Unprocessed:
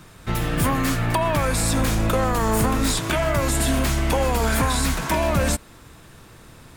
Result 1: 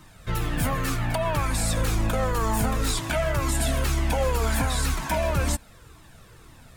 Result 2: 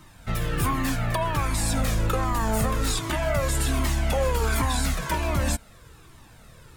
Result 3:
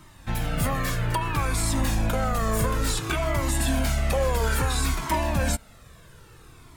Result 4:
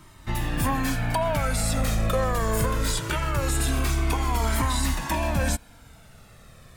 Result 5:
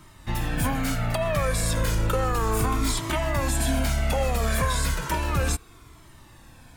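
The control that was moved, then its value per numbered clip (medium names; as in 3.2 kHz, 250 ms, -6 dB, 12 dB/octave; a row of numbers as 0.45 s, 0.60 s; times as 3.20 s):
Shepard-style flanger, rate: 2 Hz, 1.3 Hz, 0.59 Hz, 0.22 Hz, 0.33 Hz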